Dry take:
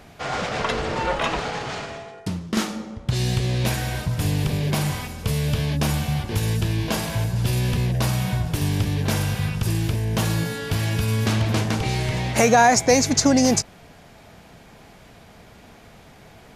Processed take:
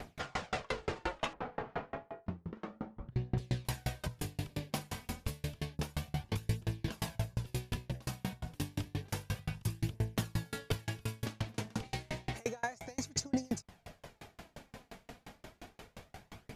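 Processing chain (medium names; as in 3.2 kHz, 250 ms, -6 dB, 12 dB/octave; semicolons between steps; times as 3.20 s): 1.33–3.38 s: low-pass 1.4 kHz 12 dB/octave; compression 6:1, threshold -30 dBFS, peak gain reduction 17.5 dB; phaser 0.3 Hz, delay 4.5 ms, feedback 35%; sawtooth tremolo in dB decaying 5.7 Hz, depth 36 dB; trim +2.5 dB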